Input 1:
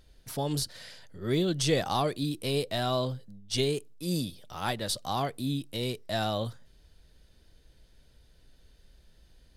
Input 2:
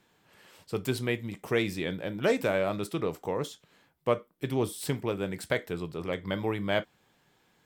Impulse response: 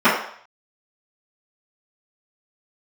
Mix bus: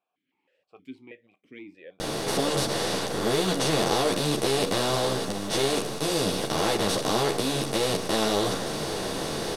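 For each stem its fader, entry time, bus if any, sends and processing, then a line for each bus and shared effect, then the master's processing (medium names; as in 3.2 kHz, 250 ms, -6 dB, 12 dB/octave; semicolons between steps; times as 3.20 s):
-0.5 dB, 2.00 s, no send, spectral levelling over time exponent 0.2; three-phase chorus
-4.5 dB, 0.00 s, no send, stepped vowel filter 6.3 Hz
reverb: none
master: none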